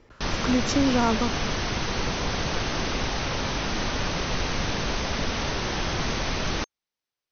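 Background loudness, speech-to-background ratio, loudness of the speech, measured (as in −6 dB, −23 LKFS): −28.0 LKFS, 2.5 dB, −25.5 LKFS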